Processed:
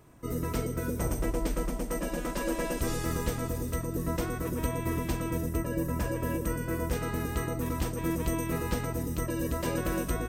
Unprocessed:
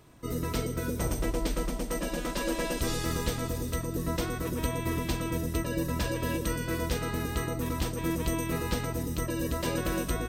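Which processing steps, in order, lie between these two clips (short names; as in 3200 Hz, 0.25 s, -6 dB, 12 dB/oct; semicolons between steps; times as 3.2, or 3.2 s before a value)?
bell 3900 Hz -8 dB 1.1 oct, from 5.49 s -15 dB, from 6.93 s -6.5 dB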